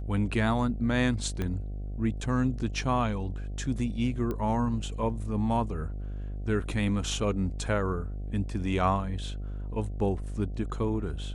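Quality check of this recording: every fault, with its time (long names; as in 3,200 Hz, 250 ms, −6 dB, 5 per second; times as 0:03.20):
mains buzz 50 Hz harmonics 15 −35 dBFS
0:01.42: click −19 dBFS
0:04.31: click −21 dBFS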